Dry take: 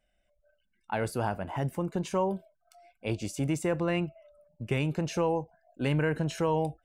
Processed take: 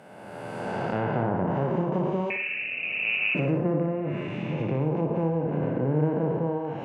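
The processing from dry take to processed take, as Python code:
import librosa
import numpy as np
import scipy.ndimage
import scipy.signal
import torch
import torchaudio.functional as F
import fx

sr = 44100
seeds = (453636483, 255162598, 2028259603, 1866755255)

p1 = fx.spec_blur(x, sr, span_ms=1000.0)
p2 = fx.env_lowpass_down(p1, sr, base_hz=1000.0, full_db=-31.0)
p3 = fx.rider(p2, sr, range_db=10, speed_s=2.0)
p4 = p2 + (p3 * librosa.db_to_amplitude(2.5))
p5 = fx.dereverb_blind(p4, sr, rt60_s=1.4)
p6 = fx.freq_invert(p5, sr, carrier_hz=2800, at=(2.3, 3.35))
p7 = scipy.signal.sosfilt(scipy.signal.butter(4, 110.0, 'highpass', fs=sr, output='sos'), p6)
p8 = p7 + fx.room_flutter(p7, sr, wall_m=10.3, rt60_s=0.5, dry=0)
y = p8 * librosa.db_to_amplitude(6.0)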